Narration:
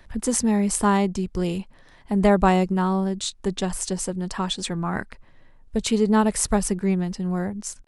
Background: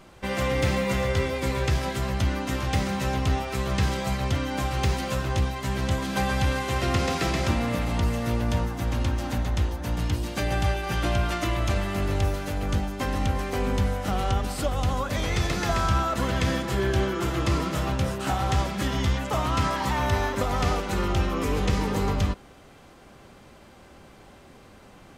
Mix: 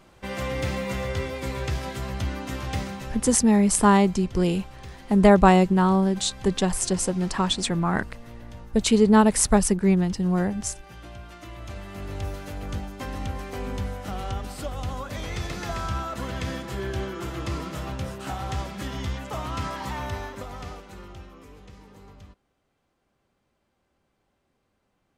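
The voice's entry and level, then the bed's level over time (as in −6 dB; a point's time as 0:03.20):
3.00 s, +2.5 dB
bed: 0:02.80 −4 dB
0:03.42 −17.5 dB
0:11.25 −17.5 dB
0:12.35 −6 dB
0:19.95 −6 dB
0:21.64 −23.5 dB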